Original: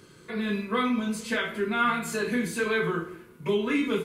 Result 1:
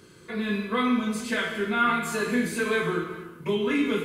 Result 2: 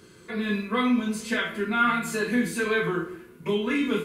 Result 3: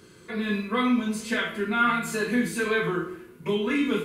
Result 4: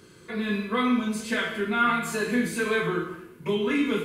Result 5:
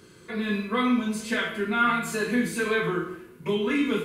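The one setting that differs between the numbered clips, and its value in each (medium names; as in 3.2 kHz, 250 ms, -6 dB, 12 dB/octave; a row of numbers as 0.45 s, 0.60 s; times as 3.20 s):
gated-style reverb, gate: 470 ms, 90 ms, 140 ms, 300 ms, 200 ms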